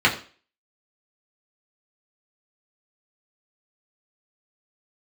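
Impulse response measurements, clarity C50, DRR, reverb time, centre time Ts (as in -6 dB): 12.0 dB, -4.0 dB, 0.40 s, 17 ms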